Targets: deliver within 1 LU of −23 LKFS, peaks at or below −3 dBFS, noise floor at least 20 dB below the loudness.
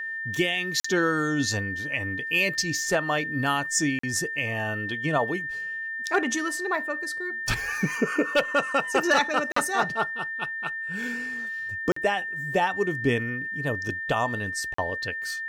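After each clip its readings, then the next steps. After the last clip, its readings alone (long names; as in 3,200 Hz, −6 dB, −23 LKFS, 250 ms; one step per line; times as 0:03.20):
number of dropouts 5; longest dropout 44 ms; interfering tone 1,800 Hz; level of the tone −30 dBFS; integrated loudness −26.0 LKFS; sample peak −12.0 dBFS; target loudness −23.0 LKFS
→ repair the gap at 0:00.80/0:03.99/0:09.52/0:11.92/0:14.74, 44 ms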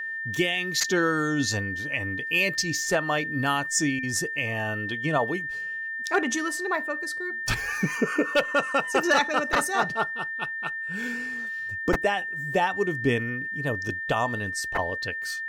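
number of dropouts 0; interfering tone 1,800 Hz; level of the tone −30 dBFS
→ notch filter 1,800 Hz, Q 30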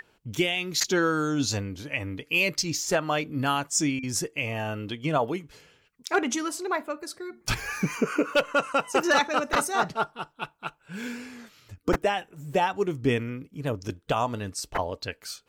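interfering tone none found; integrated loudness −27.5 LKFS; sample peak −10.5 dBFS; target loudness −23.0 LKFS
→ level +4.5 dB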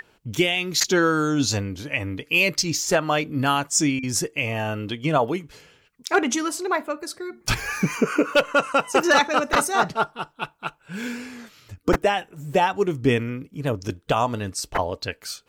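integrated loudness −23.0 LKFS; sample peak −6.0 dBFS; background noise floor −61 dBFS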